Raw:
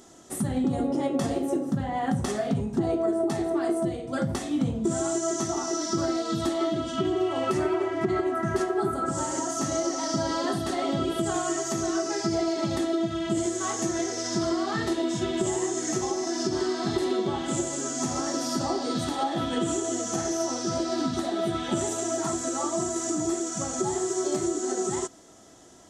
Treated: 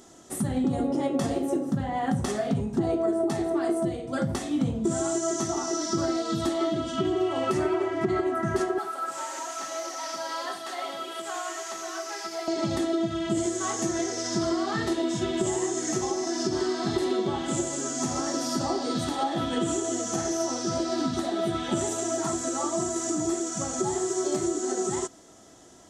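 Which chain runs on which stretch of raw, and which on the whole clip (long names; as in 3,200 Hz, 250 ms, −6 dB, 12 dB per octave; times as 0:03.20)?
0:08.78–0:12.48: linear delta modulator 64 kbit/s, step −38.5 dBFS + high-pass filter 810 Hz + high-shelf EQ 5,400 Hz −6 dB
whole clip: no processing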